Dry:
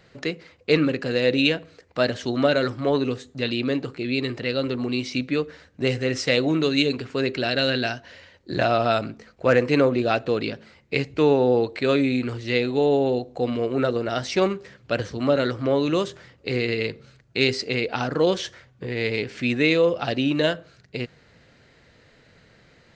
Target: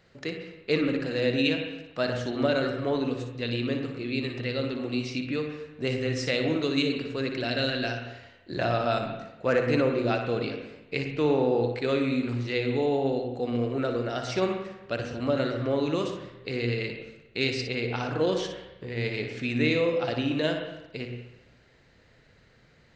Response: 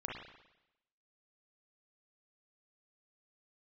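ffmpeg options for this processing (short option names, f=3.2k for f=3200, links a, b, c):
-filter_complex "[0:a]asplit=2[a][b];[1:a]atrim=start_sample=2205,lowshelf=f=84:g=11.5,adelay=59[c];[b][c]afir=irnorm=-1:irlink=0,volume=-5dB[d];[a][d]amix=inputs=2:normalize=0,volume=-6.5dB"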